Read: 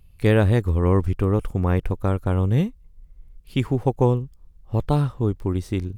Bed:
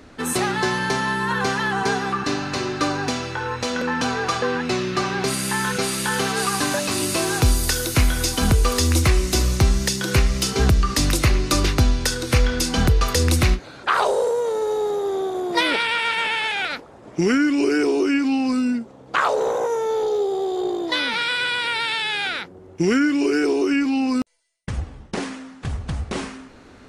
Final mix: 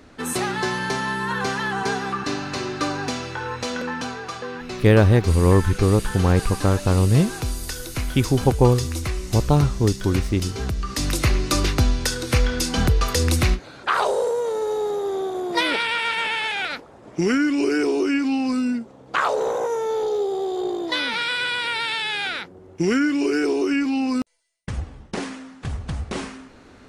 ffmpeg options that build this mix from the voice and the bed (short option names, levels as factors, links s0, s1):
-filter_complex "[0:a]adelay=4600,volume=1.41[s0];[1:a]volume=1.88,afade=t=out:st=3.7:d=0.52:silence=0.446684,afade=t=in:st=10.76:d=0.54:silence=0.398107[s1];[s0][s1]amix=inputs=2:normalize=0"